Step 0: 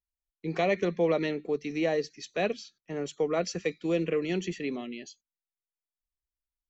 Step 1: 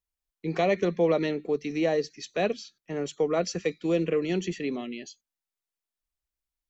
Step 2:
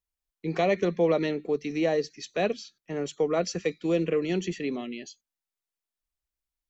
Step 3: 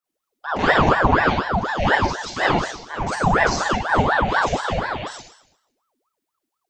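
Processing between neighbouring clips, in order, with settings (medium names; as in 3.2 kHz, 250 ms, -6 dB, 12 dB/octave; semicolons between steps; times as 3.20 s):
dynamic bell 2.2 kHz, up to -3 dB, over -43 dBFS, Q 1.3; trim +2.5 dB
no audible change
Schroeder reverb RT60 0.79 s, combs from 32 ms, DRR -8 dB; ring modulator with a swept carrier 790 Hz, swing 70%, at 4.1 Hz; trim +2.5 dB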